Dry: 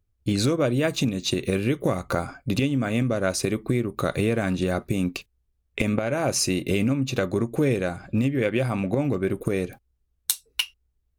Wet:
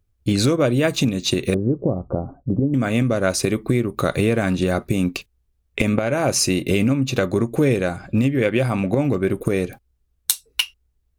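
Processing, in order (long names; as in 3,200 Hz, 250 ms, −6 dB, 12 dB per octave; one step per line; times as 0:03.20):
0:01.54–0:02.74: Bessel low-pass filter 540 Hz, order 6
level +4.5 dB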